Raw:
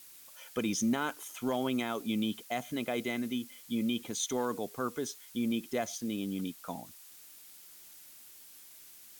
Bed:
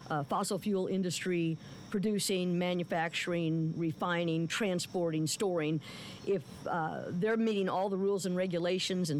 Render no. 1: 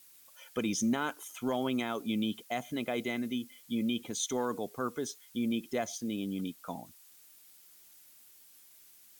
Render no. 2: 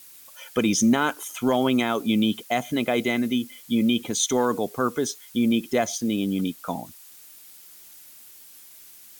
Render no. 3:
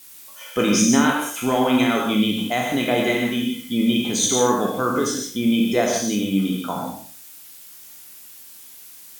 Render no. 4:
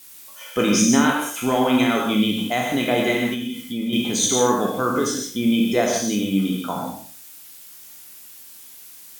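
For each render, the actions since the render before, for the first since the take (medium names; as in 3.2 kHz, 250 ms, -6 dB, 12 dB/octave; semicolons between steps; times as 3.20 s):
noise reduction 6 dB, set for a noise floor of -54 dBFS
trim +10.5 dB
spectral sustain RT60 0.45 s; gated-style reverb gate 190 ms flat, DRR 0.5 dB
3.34–3.93 s: compression 2:1, threshold -27 dBFS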